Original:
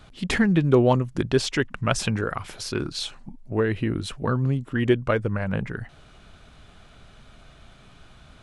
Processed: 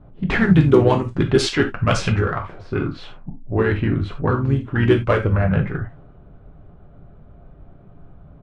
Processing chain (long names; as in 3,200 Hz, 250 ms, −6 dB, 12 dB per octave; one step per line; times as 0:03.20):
low-pass that shuts in the quiet parts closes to 560 Hz, open at −15.5 dBFS
in parallel at −5 dB: soft clipping −18.5 dBFS, distortion −11 dB
on the sum: reverb whose tail is shaped and stops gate 110 ms falling, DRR 3 dB
pitch-shifted copies added −12 semitones −16 dB, −3 semitones −7 dB